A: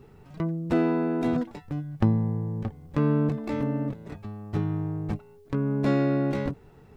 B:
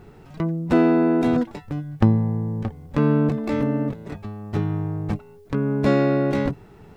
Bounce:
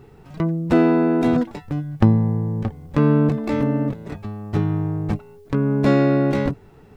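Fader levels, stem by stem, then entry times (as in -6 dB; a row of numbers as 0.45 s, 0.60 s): +3.0 dB, -6.0 dB; 0.00 s, 0.00 s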